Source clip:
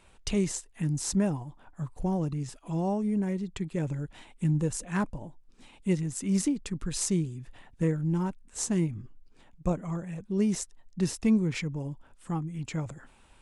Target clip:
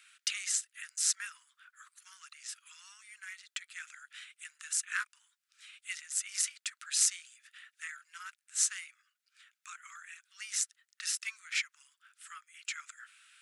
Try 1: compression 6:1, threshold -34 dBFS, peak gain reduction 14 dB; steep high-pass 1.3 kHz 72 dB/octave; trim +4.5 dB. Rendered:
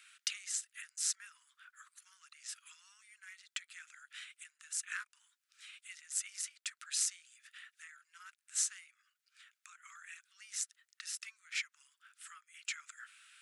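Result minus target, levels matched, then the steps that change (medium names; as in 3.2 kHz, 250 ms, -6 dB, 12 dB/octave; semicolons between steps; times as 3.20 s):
compression: peak gain reduction +14 dB
remove: compression 6:1, threshold -34 dBFS, peak gain reduction 14 dB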